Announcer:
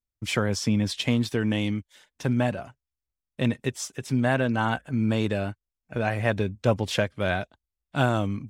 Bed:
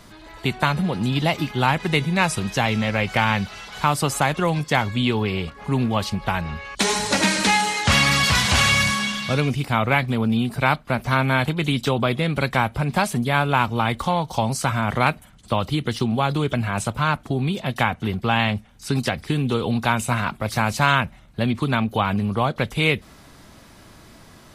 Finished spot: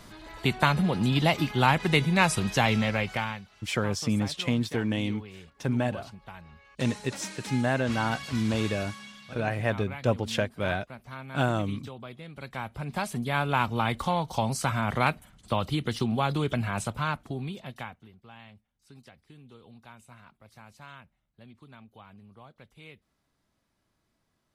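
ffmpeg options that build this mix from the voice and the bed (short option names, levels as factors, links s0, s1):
-filter_complex "[0:a]adelay=3400,volume=0.708[s0];[1:a]volume=4.73,afade=t=out:st=2.74:d=0.68:silence=0.112202,afade=t=in:st=12.34:d=1.36:silence=0.158489,afade=t=out:st=16.62:d=1.47:silence=0.0630957[s1];[s0][s1]amix=inputs=2:normalize=0"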